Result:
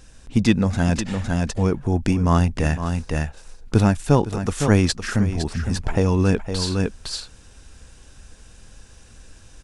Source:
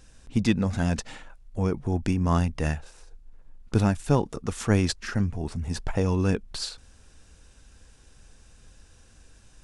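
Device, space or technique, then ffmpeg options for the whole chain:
ducked delay: -filter_complex "[0:a]asplit=3[link_01][link_02][link_03];[link_02]adelay=510,volume=-2.5dB[link_04];[link_03]apad=whole_len=447403[link_05];[link_04][link_05]sidechaincompress=threshold=-34dB:ratio=4:attack=16:release=291[link_06];[link_01][link_06]amix=inputs=2:normalize=0,volume=5.5dB"

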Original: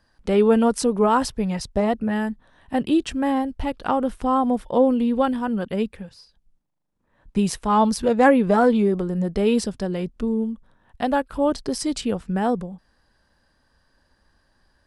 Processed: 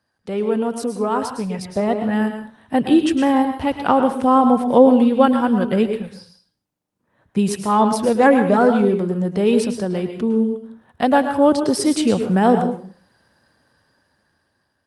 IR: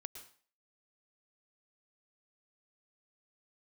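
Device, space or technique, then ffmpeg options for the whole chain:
far-field microphone of a smart speaker: -filter_complex "[1:a]atrim=start_sample=2205[link_01];[0:a][link_01]afir=irnorm=-1:irlink=0,highpass=frequency=90:width=0.5412,highpass=frequency=90:width=1.3066,dynaudnorm=framelen=490:gausssize=7:maxgain=16.5dB" -ar 48000 -c:a libopus -b:a 32k

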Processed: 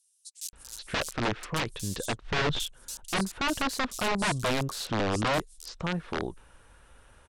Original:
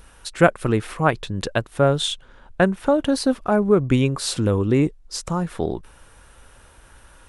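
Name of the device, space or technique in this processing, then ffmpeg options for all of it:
overflowing digital effects unit: -filter_complex "[0:a]asplit=3[link_01][link_02][link_03];[link_01]afade=type=out:start_time=1.68:duration=0.02[link_04];[link_02]asubboost=boost=11.5:cutoff=110,afade=type=in:start_time=1.68:duration=0.02,afade=type=out:start_time=2.09:duration=0.02[link_05];[link_03]afade=type=in:start_time=2.09:duration=0.02[link_06];[link_04][link_05][link_06]amix=inputs=3:normalize=0,aeval=exprs='(mod(5.01*val(0)+1,2)-1)/5.01':channel_layout=same,lowpass=10000,acrossover=split=5400[link_07][link_08];[link_07]adelay=530[link_09];[link_09][link_08]amix=inputs=2:normalize=0,volume=-7dB"

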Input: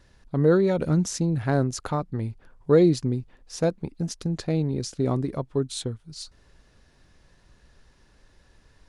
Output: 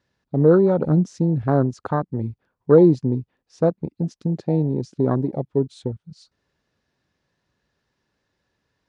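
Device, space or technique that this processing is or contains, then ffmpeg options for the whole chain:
over-cleaned archive recording: -af "highpass=110,lowpass=6400,afwtdn=0.0316,volume=5dB"

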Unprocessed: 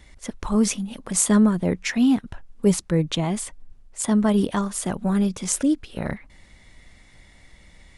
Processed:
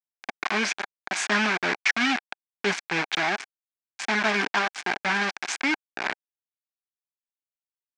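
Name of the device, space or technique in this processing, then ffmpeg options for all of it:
hand-held game console: -af "acrusher=bits=3:mix=0:aa=0.000001,highpass=420,equalizer=frequency=520:width_type=q:width=4:gain=-10,equalizer=frequency=790:width_type=q:width=4:gain=5,equalizer=frequency=1600:width_type=q:width=4:gain=10,equalizer=frequency=2300:width_type=q:width=4:gain=9,lowpass=frequency=5800:width=0.5412,lowpass=frequency=5800:width=1.3066,volume=-1.5dB"

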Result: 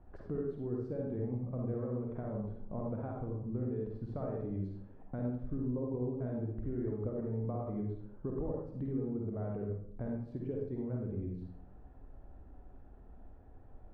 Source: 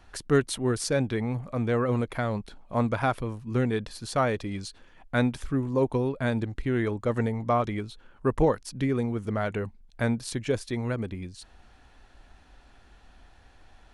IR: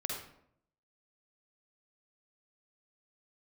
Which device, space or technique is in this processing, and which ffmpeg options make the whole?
television next door: -filter_complex "[0:a]acompressor=threshold=-37dB:ratio=4,lowpass=560[link_01];[1:a]atrim=start_sample=2205[link_02];[link_01][link_02]afir=irnorm=-1:irlink=0"

